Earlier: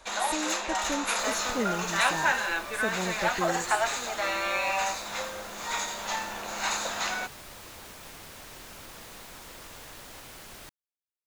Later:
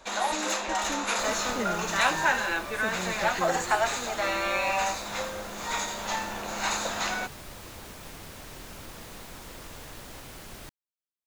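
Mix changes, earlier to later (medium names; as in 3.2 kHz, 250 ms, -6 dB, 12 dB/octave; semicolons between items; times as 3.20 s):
speech -8.0 dB; master: add bass shelf 420 Hz +7 dB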